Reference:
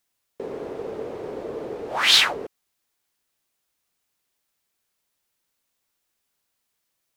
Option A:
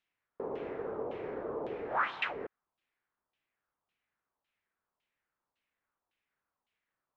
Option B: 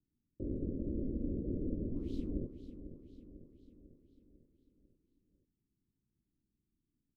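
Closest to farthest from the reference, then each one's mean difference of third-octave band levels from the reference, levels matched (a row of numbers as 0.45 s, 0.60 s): A, B; 7.0 dB, 16.5 dB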